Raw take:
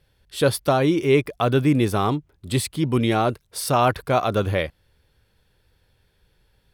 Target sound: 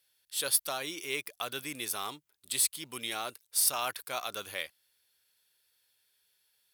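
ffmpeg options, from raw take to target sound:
ffmpeg -i in.wav -af "aderivative,acrusher=bits=5:mode=log:mix=0:aa=0.000001,volume=2dB" out.wav

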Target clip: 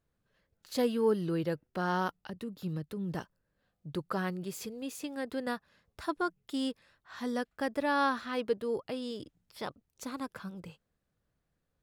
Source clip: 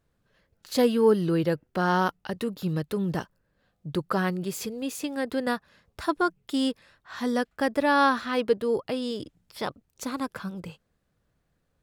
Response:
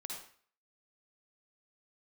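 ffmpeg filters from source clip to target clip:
-filter_complex "[0:a]asettb=1/sr,asplit=3[link_01][link_02][link_03];[link_01]atrim=end=2.284[link_04];[link_02]atrim=start=2.28:end=3.14,asetpts=PTS-STARTPTS,afade=type=in:duration=0.004:curve=qsin,afade=type=out:start_time=0.856:duration=0.004:curve=qsin,acrossover=split=330[link_05][link_06];[link_06]acompressor=threshold=-38dB:ratio=10[link_07];[link_05][link_07]amix=inputs=2:normalize=0[link_08];[link_03]atrim=start=3.136[link_09];[link_04][link_08]acrossfade=duration=0.004:curve1=hsin:curve2=qsin[link_10];[link_10][link_09]acrossfade=duration=0.004:curve1=qsin:curve2=hsin,volume=-7.5dB"

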